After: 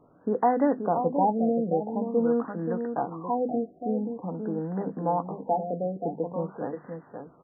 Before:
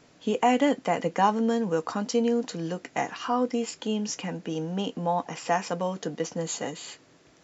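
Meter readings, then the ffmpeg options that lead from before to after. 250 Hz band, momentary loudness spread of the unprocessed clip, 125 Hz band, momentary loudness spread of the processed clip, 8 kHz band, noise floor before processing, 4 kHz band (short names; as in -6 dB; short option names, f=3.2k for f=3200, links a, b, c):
0.0 dB, 9 LU, 0.0 dB, 9 LU, n/a, -58 dBFS, under -40 dB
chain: -af "asuperstop=centerf=2900:order=8:qfactor=0.93,bandreject=f=50:t=h:w=6,bandreject=f=100:t=h:w=6,bandreject=f=150:t=h:w=6,bandreject=f=200:t=h:w=6,bandreject=f=250:t=h:w=6,aecho=1:1:529:0.447,afftfilt=real='re*lt(b*sr/1024,740*pow(2100/740,0.5+0.5*sin(2*PI*0.47*pts/sr)))':imag='im*lt(b*sr/1024,740*pow(2100/740,0.5+0.5*sin(2*PI*0.47*pts/sr)))':win_size=1024:overlap=0.75"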